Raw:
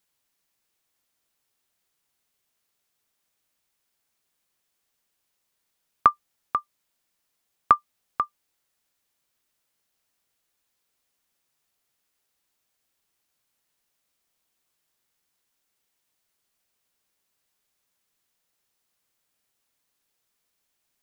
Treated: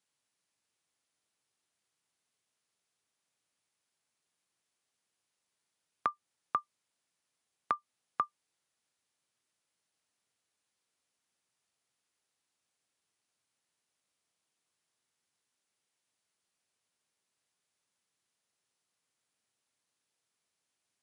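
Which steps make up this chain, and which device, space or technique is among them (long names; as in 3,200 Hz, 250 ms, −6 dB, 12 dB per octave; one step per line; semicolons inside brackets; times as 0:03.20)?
podcast mastering chain (high-pass filter 83 Hz 24 dB per octave; downward compressor 3 to 1, threshold −20 dBFS, peak gain reduction 7 dB; brickwall limiter −10 dBFS, peak gain reduction 5 dB; level −4.5 dB; MP3 112 kbit/s 24,000 Hz)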